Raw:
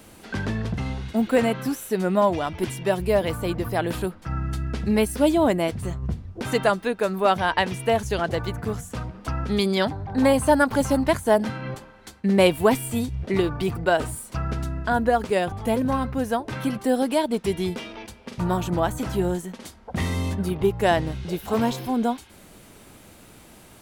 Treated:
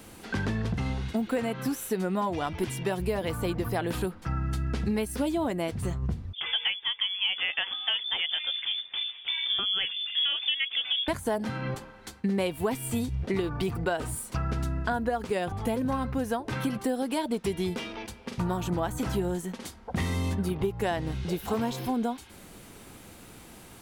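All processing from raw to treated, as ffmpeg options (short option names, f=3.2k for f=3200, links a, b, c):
-filter_complex "[0:a]asettb=1/sr,asplit=3[a][b][c];[a]atrim=end=6.334[d];[b]atrim=start=6.33:end=11.08,asetpts=PTS-STARTPTS,afade=t=in:d=0.004:c=qsin,afade=t=out:st=4.746:d=0.004:c=qsin,acrossover=split=620[e][f];[e]aeval=exprs='val(0)*(1-0.5/2+0.5/2*cos(2*PI*4.1*n/s))':c=same[g];[f]aeval=exprs='val(0)*(1-0.5/2-0.5/2*cos(2*PI*4.1*n/s))':c=same[h];[g][h]amix=inputs=2:normalize=0,lowpass=f=3.1k:t=q:w=0.5098,lowpass=f=3.1k:t=q:w=0.6013,lowpass=f=3.1k:t=q:w=0.9,lowpass=f=3.1k:t=q:w=2.563,afreqshift=-3600[i];[c]atrim=start=11.076[j];[d][i]acrossfade=d=0.004:c1=hsin:c2=qsin[k];[k][j]acrossfade=d=0.004:c1=qsin:c2=hsin,bandreject=f=610:w=12,acompressor=threshold=-25dB:ratio=6"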